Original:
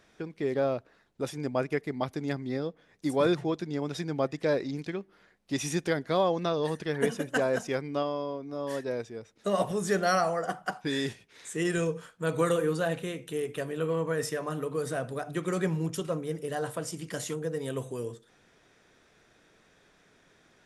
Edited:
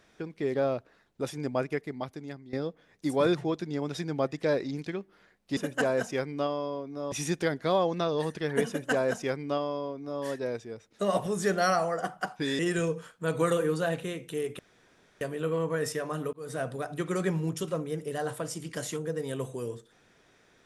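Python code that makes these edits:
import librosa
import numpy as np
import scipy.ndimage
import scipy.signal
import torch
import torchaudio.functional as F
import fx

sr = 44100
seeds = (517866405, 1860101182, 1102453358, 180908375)

y = fx.edit(x, sr, fx.fade_out_to(start_s=1.53, length_s=1.0, floor_db=-15.5),
    fx.duplicate(start_s=7.13, length_s=1.55, to_s=5.57),
    fx.cut(start_s=11.04, length_s=0.54),
    fx.insert_room_tone(at_s=13.58, length_s=0.62),
    fx.fade_in_span(start_s=14.7, length_s=0.28), tone=tone)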